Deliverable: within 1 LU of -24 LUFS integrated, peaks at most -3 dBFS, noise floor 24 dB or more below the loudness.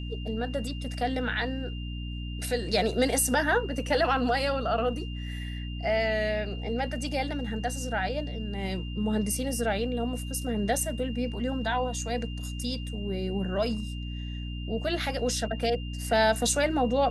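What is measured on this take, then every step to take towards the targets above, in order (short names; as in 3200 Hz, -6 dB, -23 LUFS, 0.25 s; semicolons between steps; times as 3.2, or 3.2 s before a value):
hum 60 Hz; harmonics up to 300 Hz; hum level -33 dBFS; steady tone 2800 Hz; tone level -44 dBFS; loudness -29.0 LUFS; peak -12.0 dBFS; loudness target -24.0 LUFS
-> notches 60/120/180/240/300 Hz; notch 2800 Hz, Q 30; gain +5 dB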